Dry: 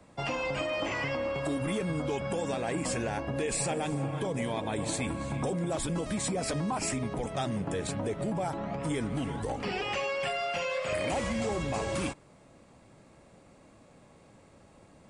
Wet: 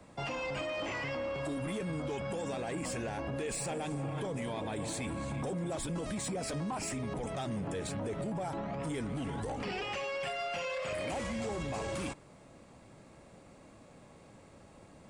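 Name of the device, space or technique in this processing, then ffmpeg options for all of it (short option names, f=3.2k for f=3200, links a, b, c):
soft clipper into limiter: -af "asoftclip=type=tanh:threshold=-24.5dB,alimiter=level_in=7.5dB:limit=-24dB:level=0:latency=1:release=30,volume=-7.5dB,volume=1dB"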